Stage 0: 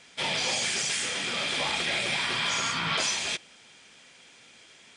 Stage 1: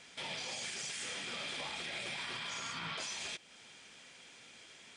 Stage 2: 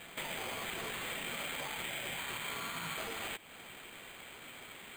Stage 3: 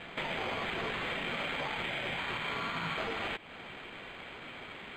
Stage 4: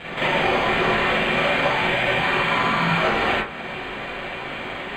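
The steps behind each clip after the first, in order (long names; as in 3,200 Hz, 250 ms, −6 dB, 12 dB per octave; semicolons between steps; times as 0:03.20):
downward compressor 2 to 1, threshold −40 dBFS, peak gain reduction 9 dB; brickwall limiter −29.5 dBFS, peak gain reduction 4.5 dB; level −2.5 dB
downward compressor, threshold −43 dBFS, peak gain reduction 5.5 dB; decimation without filtering 8×; level +6 dB
high-frequency loss of the air 210 metres; level +7 dB
convolution reverb RT60 0.40 s, pre-delay 33 ms, DRR −7.5 dB; level +7.5 dB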